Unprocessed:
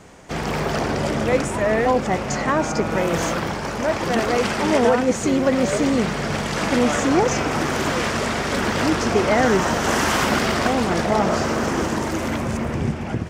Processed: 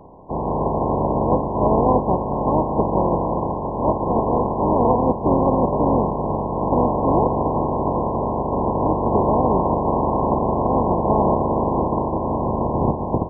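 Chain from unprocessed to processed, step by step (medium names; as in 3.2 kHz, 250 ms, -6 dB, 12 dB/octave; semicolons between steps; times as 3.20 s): spectral contrast reduction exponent 0.34; peak limiter -8.5 dBFS, peak gain reduction 5.5 dB; brick-wall FIR low-pass 1.1 kHz; trim +7 dB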